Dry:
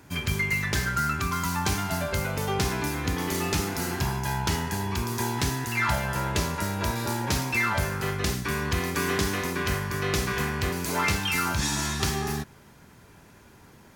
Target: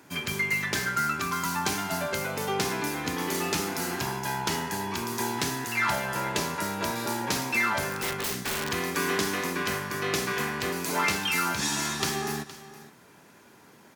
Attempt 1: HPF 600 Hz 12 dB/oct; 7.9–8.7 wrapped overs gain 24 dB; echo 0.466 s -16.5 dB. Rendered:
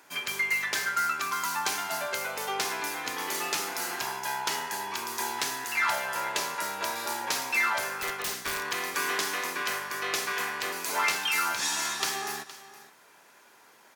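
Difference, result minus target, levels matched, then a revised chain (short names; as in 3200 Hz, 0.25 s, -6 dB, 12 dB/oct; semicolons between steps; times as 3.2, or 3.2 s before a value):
250 Hz band -11.5 dB
HPF 200 Hz 12 dB/oct; 7.9–8.7 wrapped overs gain 24 dB; echo 0.466 s -16.5 dB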